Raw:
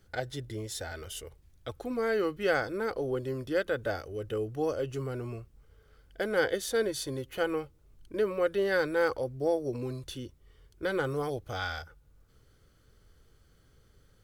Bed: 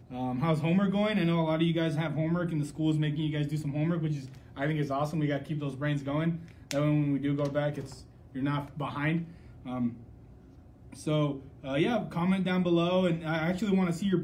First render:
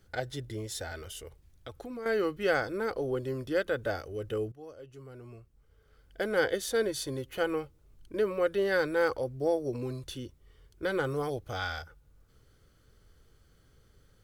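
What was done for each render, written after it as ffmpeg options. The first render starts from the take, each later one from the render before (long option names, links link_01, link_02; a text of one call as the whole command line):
ffmpeg -i in.wav -filter_complex "[0:a]asettb=1/sr,asplit=3[link_01][link_02][link_03];[link_01]atrim=end=0.984[link_04];[link_02]atrim=start=0.98:end=2.06,asetpts=PTS-STARTPTS,afade=type=in:duration=0.004:curve=qsin,afade=type=out:start_time=1.076:duration=0.004:curve=qsin,acompressor=threshold=-39dB:ratio=3:attack=3.2:release=140:knee=1:detection=peak[link_05];[link_03]atrim=start=2.056[link_06];[link_04][link_05]acrossfade=duration=0.004:curve1=hsin:curve2=qsin[link_07];[link_07][link_06]acrossfade=duration=0.004:curve1=qsin:curve2=hsin,asplit=2[link_08][link_09];[link_08]atrim=end=4.52,asetpts=PTS-STARTPTS,afade=type=out:start_time=4.516:duration=0.004:curve=hsin:silence=0.141254[link_10];[link_09]atrim=start=4.52,asetpts=PTS-STARTPTS,afade=type=in:duration=1.69:curve=qua:silence=0.141254[link_11];[link_10][link_11]concat=n=2:v=0:a=1" out.wav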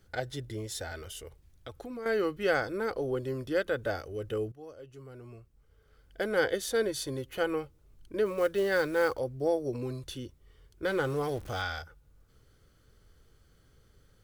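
ffmpeg -i in.wav -filter_complex "[0:a]asplit=3[link_01][link_02][link_03];[link_01]afade=type=out:start_time=8.25:duration=0.02[link_04];[link_02]acrusher=bits=6:mode=log:mix=0:aa=0.000001,afade=type=in:start_time=8.25:duration=0.02,afade=type=out:start_time=9.18:duration=0.02[link_05];[link_03]afade=type=in:start_time=9.18:duration=0.02[link_06];[link_04][link_05][link_06]amix=inputs=3:normalize=0,asettb=1/sr,asplit=3[link_07][link_08][link_09];[link_07]atrim=end=10.854[link_10];[link_08]atrim=start=10.85:end=11.62,asetpts=PTS-STARTPTS,afade=type=in:duration=0.004:curve=qsin,afade=type=out:start_time=0.766:duration=0.004:curve=qsin,aeval=exprs='val(0)+0.5*0.00708*sgn(val(0))':channel_layout=same[link_11];[link_09]atrim=start=11.616[link_12];[link_10][link_11]acrossfade=duration=0.004:curve1=hsin:curve2=qsin[link_13];[link_13][link_12]acrossfade=duration=0.004:curve1=qsin:curve2=hsin" out.wav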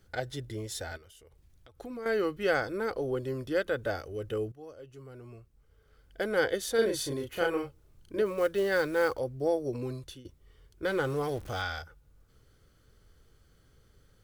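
ffmpeg -i in.wav -filter_complex "[0:a]asplit=3[link_01][link_02][link_03];[link_01]afade=type=out:start_time=0.96:duration=0.02[link_04];[link_02]acompressor=threshold=-55dB:ratio=4:attack=3.2:release=140:knee=1:detection=peak,afade=type=in:start_time=0.96:duration=0.02,afade=type=out:start_time=1.79:duration=0.02[link_05];[link_03]afade=type=in:start_time=1.79:duration=0.02[link_06];[link_04][link_05][link_06]amix=inputs=3:normalize=0,asettb=1/sr,asplit=3[link_07][link_08][link_09];[link_07]atrim=end=6.754[link_10];[link_08]atrim=start=6.75:end=8.22,asetpts=PTS-STARTPTS,afade=type=in:duration=0.004:curve=qsin,afade=type=out:start_time=1.466:duration=0.004:curve=qsin,asplit=2[link_11][link_12];[link_12]adelay=35,volume=-2.5dB[link_13];[link_11][link_13]amix=inputs=2:normalize=0,atrim=end_sample=64827[link_14];[link_09]atrim=start=8.216[link_15];[link_10][link_14]acrossfade=duration=0.004:curve1=hsin:curve2=qsin[link_16];[link_16][link_15]acrossfade=duration=0.004:curve1=qsin:curve2=hsin,asplit=2[link_17][link_18];[link_17]atrim=end=10.25,asetpts=PTS-STARTPTS,afade=type=out:start_time=9.85:duration=0.4:curve=qsin:silence=0.141254[link_19];[link_18]atrim=start=10.25,asetpts=PTS-STARTPTS,afade=type=in:duration=0.004:curve=hsin:silence=0.141254[link_20];[link_19][link_20]concat=n=2:v=0:a=1" out.wav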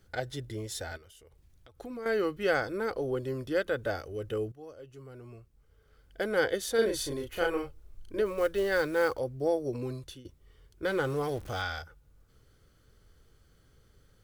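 ffmpeg -i in.wav -filter_complex "[0:a]asplit=3[link_01][link_02][link_03];[link_01]afade=type=out:start_time=6.87:duration=0.02[link_04];[link_02]asubboost=boost=5:cutoff=53,afade=type=in:start_time=6.87:duration=0.02,afade=type=out:start_time=8.8:duration=0.02[link_05];[link_03]afade=type=in:start_time=8.8:duration=0.02[link_06];[link_04][link_05][link_06]amix=inputs=3:normalize=0" out.wav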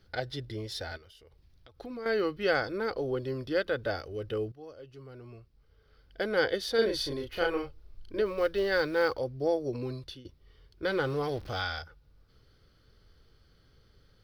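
ffmpeg -i in.wav -af "highshelf=frequency=5900:width_type=q:width=3:gain=-7" out.wav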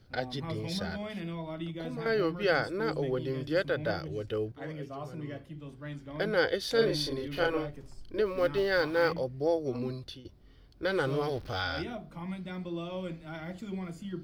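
ffmpeg -i in.wav -i bed.wav -filter_complex "[1:a]volume=-11dB[link_01];[0:a][link_01]amix=inputs=2:normalize=0" out.wav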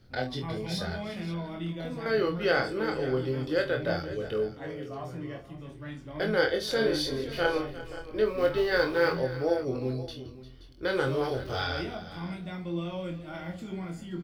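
ffmpeg -i in.wav -filter_complex "[0:a]asplit=2[link_01][link_02];[link_02]adelay=23,volume=-4dB[link_03];[link_01][link_03]amix=inputs=2:normalize=0,aecho=1:1:47|350|526:0.266|0.158|0.168" out.wav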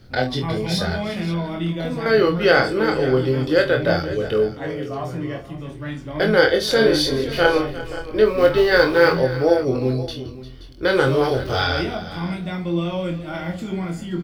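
ffmpeg -i in.wav -af "volume=10.5dB,alimiter=limit=-1dB:level=0:latency=1" out.wav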